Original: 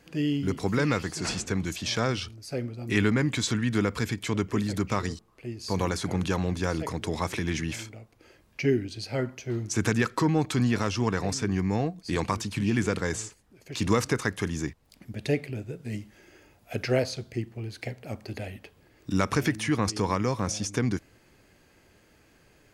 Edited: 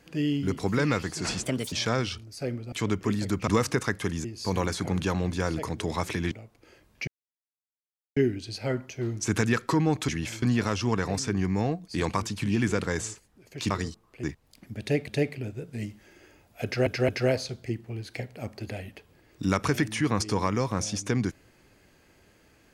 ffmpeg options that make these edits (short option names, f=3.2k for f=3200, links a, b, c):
-filter_complex "[0:a]asplit=15[a][b][c][d][e][f][g][h][i][j][k][l][m][n][o];[a]atrim=end=1.434[p];[b]atrim=start=1.43:end=1.83,asetpts=PTS-STARTPTS,asetrate=59976,aresample=44100[q];[c]atrim=start=1.826:end=2.832[r];[d]atrim=start=4.198:end=4.952[s];[e]atrim=start=13.848:end=14.622[t];[f]atrim=start=5.478:end=7.552[u];[g]atrim=start=7.888:end=8.65,asetpts=PTS-STARTPTS,afade=t=out:st=0.758:d=0.004:c=hsin,apad=pad_dur=1.09[v];[h]atrim=start=8.65:end=10.572,asetpts=PTS-STARTPTS,afade=t=in:d=0.004:c=hsin[w];[i]atrim=start=7.548:end=7.892[x];[j]atrim=start=10.568:end=13.852[y];[k]atrim=start=4.948:end=5.482[z];[l]atrim=start=14.618:end=15.462[aa];[m]atrim=start=15.188:end=16.982[ab];[n]atrim=start=16.758:end=16.982[ac];[o]atrim=start=16.758[ad];[p][q]acrossfade=d=0.004:c1=hsin:c2=hsin[ae];[ae][r]acrossfade=d=0.004:c1=hsin:c2=hsin[af];[af][s]acrossfade=d=0.004:c1=hsin:c2=hsin[ag];[ag][t]acrossfade=d=0.004:c1=hsin:c2=hsin[ah];[ah][u]acrossfade=d=0.004:c1=hsin:c2=hsin[ai];[v][w]concat=n=2:v=0:a=1[aj];[ai][aj]acrossfade=d=0.004:c1=hsin:c2=hsin[ak];[ak][x]acrossfade=d=0.004:c1=hsin:c2=hsin[al];[al][y]acrossfade=d=0.004:c1=hsin:c2=hsin[am];[am][z]acrossfade=d=0.004:c1=hsin:c2=hsin[an];[an][aa]acrossfade=d=0.004:c1=hsin:c2=hsin[ao];[ao][ab]acrossfade=d=0.004:c1=hsin:c2=hsin[ap];[ap][ac]acrossfade=d=0.004:c1=hsin:c2=hsin[aq];[aq][ad]acrossfade=d=0.004:c1=hsin:c2=hsin"